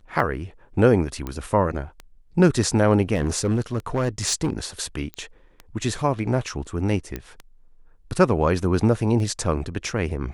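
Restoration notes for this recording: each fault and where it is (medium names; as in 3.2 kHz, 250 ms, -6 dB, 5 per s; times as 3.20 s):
tick 33 1/3 rpm
1.27 s: pop -16 dBFS
3.14–4.53 s: clipped -17 dBFS
5.14 s: pop -18 dBFS
7.16 s: pop -15 dBFS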